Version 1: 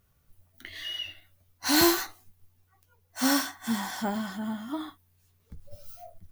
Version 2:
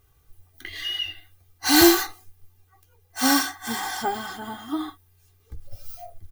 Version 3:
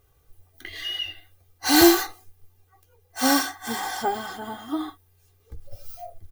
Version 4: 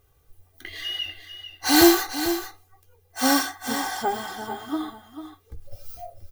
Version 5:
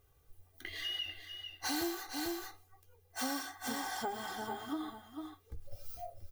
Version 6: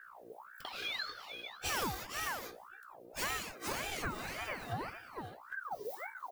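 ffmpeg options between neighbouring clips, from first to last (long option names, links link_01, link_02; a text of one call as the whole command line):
ffmpeg -i in.wav -af "aecho=1:1:2.5:0.88,volume=3.5dB" out.wav
ffmpeg -i in.wav -af "equalizer=frequency=540:width=1.8:gain=7.5,volume=-1.5dB" out.wav
ffmpeg -i in.wav -af "aecho=1:1:445:0.299" out.wav
ffmpeg -i in.wav -af "acompressor=threshold=-29dB:ratio=5,volume=-6dB" out.wav
ffmpeg -i in.wav -af "aeval=exprs='val(0)+0.00224*(sin(2*PI*60*n/s)+sin(2*PI*2*60*n/s)/2+sin(2*PI*3*60*n/s)/3+sin(2*PI*4*60*n/s)/4+sin(2*PI*5*60*n/s)/5)':channel_layout=same,aeval=exprs='val(0)*sin(2*PI*1000*n/s+1000*0.6/1.8*sin(2*PI*1.8*n/s))':channel_layout=same,volume=2.5dB" out.wav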